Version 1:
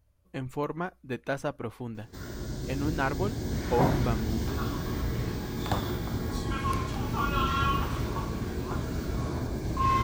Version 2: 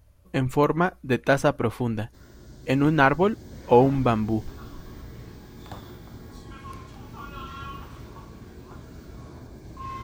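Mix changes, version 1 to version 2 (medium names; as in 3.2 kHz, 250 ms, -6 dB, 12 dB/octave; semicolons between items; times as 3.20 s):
speech +11.0 dB; background -11.0 dB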